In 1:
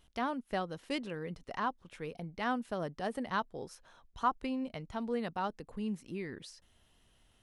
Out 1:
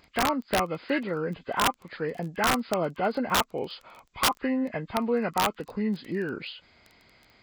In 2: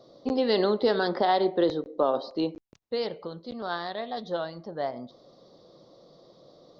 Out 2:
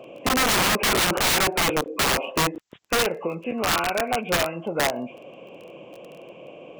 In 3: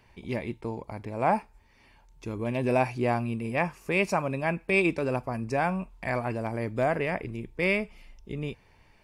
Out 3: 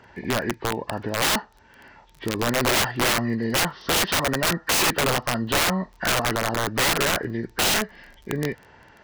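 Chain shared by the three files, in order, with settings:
hearing-aid frequency compression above 1,000 Hz 1.5 to 1
high-pass filter 210 Hz 6 dB per octave
in parallel at +0.5 dB: downward compressor 10 to 1, threshold −38 dBFS
on the sum: dynamic equaliser 1,300 Hz, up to +5 dB, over −46 dBFS, Q 3.4
surface crackle 14 per second −42 dBFS
wrap-around overflow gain 22 dB
level +6.5 dB

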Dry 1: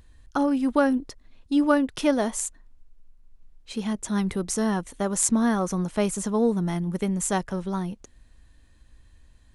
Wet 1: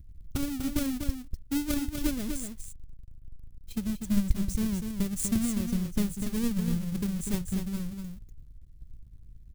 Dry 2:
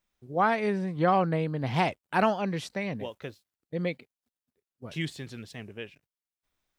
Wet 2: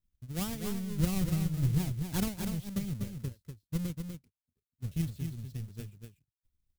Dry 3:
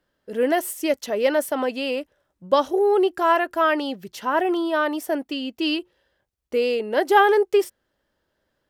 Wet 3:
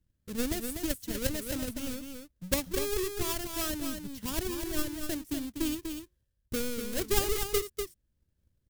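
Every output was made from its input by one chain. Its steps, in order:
each half-wave held at its own peak
drawn EQ curve 100 Hz 0 dB, 740 Hz −28 dB, 13,000 Hz −10 dB
transient designer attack +7 dB, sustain −2 dB
single-tap delay 245 ms −6.5 dB

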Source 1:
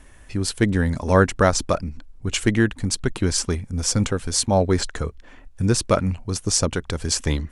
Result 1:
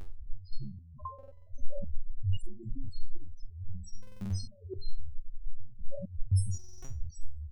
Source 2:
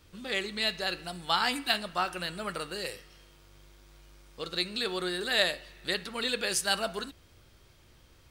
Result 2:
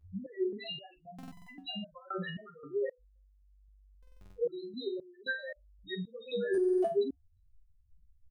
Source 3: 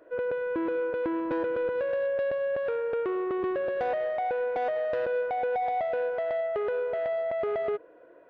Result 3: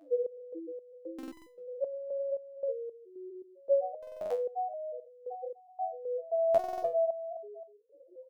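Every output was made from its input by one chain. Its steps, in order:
in parallel at +3 dB: brickwall limiter −14.5 dBFS
on the sum: compressor whose output falls as the input rises −25 dBFS, ratio −1
spectral peaks only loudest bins 2
on a send: ambience of single reflections 13 ms −14.5 dB, 44 ms −11 dB
on the sum: buffer that repeats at 0:01.14/0:03.98/0:06.50, samples 2,048, times 6
step-sequenced resonator 3.8 Hz 96–1,000 Hz
level +8.5 dB

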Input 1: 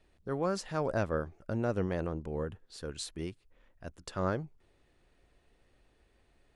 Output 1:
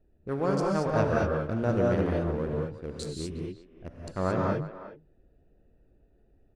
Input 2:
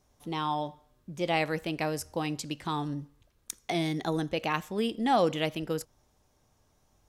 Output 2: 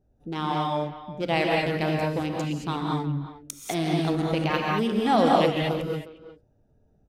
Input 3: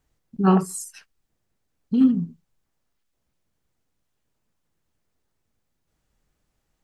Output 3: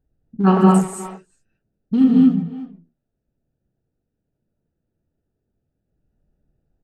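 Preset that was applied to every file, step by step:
adaptive Wiener filter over 41 samples
far-end echo of a speakerphone 360 ms, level −14 dB
reverb whose tail is shaped and stops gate 250 ms rising, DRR −1.5 dB
level +3 dB

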